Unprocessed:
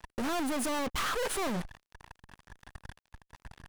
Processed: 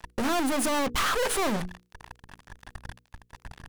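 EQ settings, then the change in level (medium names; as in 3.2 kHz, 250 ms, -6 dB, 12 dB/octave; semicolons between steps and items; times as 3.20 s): hum notches 60/120/180/240/300/360/420/480 Hz; +6.0 dB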